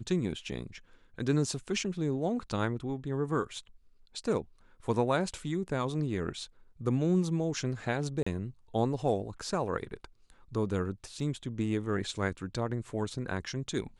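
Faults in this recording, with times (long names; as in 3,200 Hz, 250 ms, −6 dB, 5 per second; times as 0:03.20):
0:08.23–0:08.27: drop-out 35 ms
0:11.20: drop-out 2.1 ms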